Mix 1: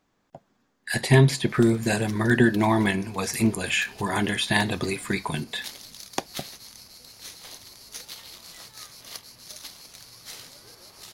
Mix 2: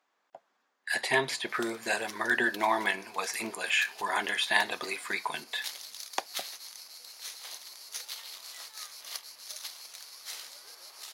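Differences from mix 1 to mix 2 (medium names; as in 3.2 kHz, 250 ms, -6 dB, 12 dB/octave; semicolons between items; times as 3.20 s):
speech: add treble shelf 4.5 kHz -8 dB; master: add high-pass 710 Hz 12 dB/octave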